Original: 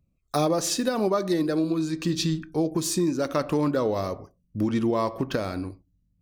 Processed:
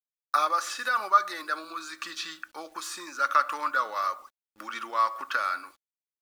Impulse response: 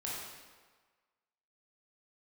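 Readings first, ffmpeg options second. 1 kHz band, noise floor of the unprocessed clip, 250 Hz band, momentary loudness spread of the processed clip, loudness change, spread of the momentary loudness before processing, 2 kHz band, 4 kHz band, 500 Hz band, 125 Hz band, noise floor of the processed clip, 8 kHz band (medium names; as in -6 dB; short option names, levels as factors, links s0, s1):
+6.5 dB, -70 dBFS, -24.0 dB, 14 LU, -2.5 dB, 7 LU, +8.5 dB, -4.0 dB, -14.0 dB, under -35 dB, under -85 dBFS, -8.5 dB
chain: -filter_complex "[0:a]acrossover=split=3000[s0][s1];[s1]acompressor=threshold=0.0158:ratio=4:attack=1:release=60[s2];[s0][s2]amix=inputs=2:normalize=0,highpass=f=1300:t=q:w=5.2,acrusher=bits=9:mix=0:aa=0.000001,aecho=1:1:3.5:0.38,volume=0.891"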